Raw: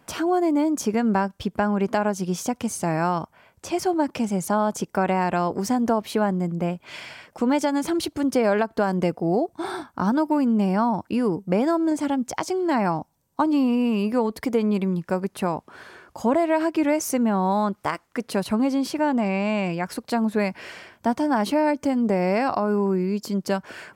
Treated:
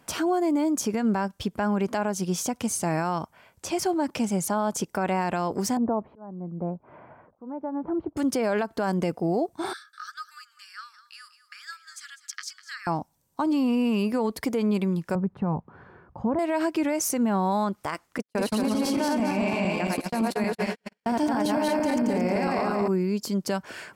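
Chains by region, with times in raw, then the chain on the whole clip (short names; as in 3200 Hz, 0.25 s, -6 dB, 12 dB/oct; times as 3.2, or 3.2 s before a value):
5.77–8.17 LPF 1100 Hz 24 dB/oct + auto swell 0.771 s
9.73–12.87 rippled Chebyshev high-pass 1200 Hz, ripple 9 dB + echo 0.2 s -14.5 dB
15.15–16.39 LPF 1000 Hz + resonant low shelf 220 Hz +7 dB, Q 1.5 + notch 630 Hz, Q 7.4
18.18–22.88 regenerating reverse delay 0.113 s, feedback 65%, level 0 dB + gate -26 dBFS, range -46 dB
whole clip: bell 9600 Hz +4.5 dB 2.5 oct; limiter -15.5 dBFS; gain -1.5 dB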